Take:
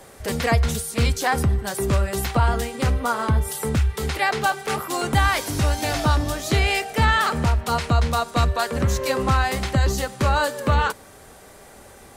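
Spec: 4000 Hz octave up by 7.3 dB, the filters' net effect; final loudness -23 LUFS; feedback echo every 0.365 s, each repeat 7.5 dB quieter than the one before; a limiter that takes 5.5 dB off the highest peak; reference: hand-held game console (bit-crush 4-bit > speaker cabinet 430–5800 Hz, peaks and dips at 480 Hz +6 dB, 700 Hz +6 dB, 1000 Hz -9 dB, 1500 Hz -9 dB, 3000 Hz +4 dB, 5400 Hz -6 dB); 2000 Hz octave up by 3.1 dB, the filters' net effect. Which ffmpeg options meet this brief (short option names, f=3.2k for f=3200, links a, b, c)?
-af "equalizer=f=2k:t=o:g=6,equalizer=f=4k:t=o:g=6,alimiter=limit=-9.5dB:level=0:latency=1,aecho=1:1:365|730|1095|1460|1825:0.422|0.177|0.0744|0.0312|0.0131,acrusher=bits=3:mix=0:aa=0.000001,highpass=430,equalizer=f=480:t=q:w=4:g=6,equalizer=f=700:t=q:w=4:g=6,equalizer=f=1k:t=q:w=4:g=-9,equalizer=f=1.5k:t=q:w=4:g=-9,equalizer=f=3k:t=q:w=4:g=4,equalizer=f=5.4k:t=q:w=4:g=-6,lowpass=f=5.8k:w=0.5412,lowpass=f=5.8k:w=1.3066,volume=-1dB"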